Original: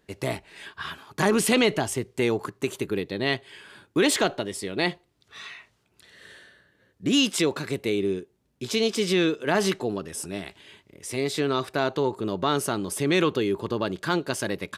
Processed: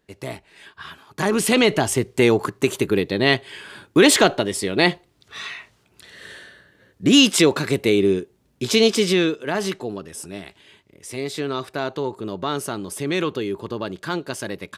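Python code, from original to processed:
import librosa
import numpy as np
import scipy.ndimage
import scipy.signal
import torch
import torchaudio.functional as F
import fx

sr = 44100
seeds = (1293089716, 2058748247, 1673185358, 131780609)

y = fx.gain(x, sr, db=fx.line((0.89, -3.0), (2.0, 8.0), (8.88, 8.0), (9.51, -1.0)))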